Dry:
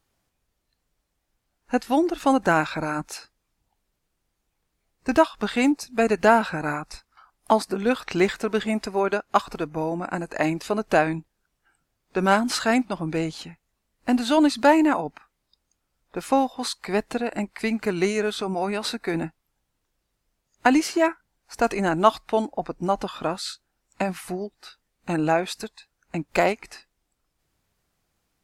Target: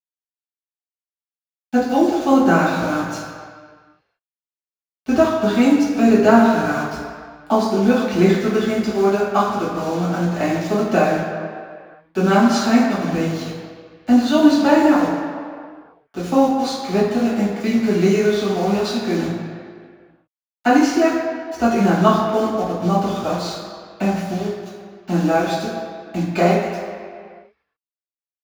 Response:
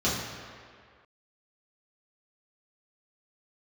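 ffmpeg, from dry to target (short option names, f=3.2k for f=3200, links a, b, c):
-filter_complex "[0:a]acrusher=bits=5:mix=0:aa=0.000001[a];[1:a]atrim=start_sample=2205[b];[a][b]afir=irnorm=-1:irlink=0,volume=-9.5dB"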